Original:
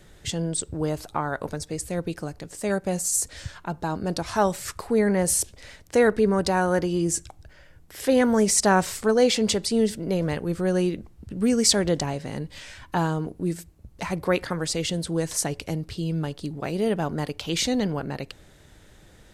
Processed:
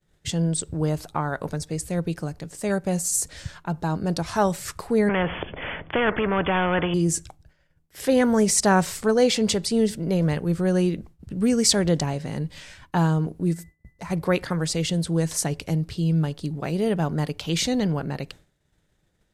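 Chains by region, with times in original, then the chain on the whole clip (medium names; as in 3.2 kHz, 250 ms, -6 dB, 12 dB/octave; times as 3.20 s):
5.09–6.94 s: overdrive pedal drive 13 dB, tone 1.1 kHz, clips at -8.5 dBFS + brick-wall FIR low-pass 3.5 kHz + spectrum-flattening compressor 2:1
13.53–14.09 s: peaking EQ 3 kHz -6.5 dB 1.2 oct + compression 2.5:1, threshold -35 dBFS + whistle 2 kHz -57 dBFS
whole clip: expander -39 dBFS; peaking EQ 160 Hz +6.5 dB 0.42 oct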